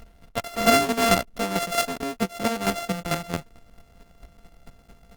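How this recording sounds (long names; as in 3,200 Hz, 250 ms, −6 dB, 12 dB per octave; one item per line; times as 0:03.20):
a buzz of ramps at a fixed pitch in blocks of 64 samples
chopped level 4.5 Hz, depth 60%, duty 15%
Opus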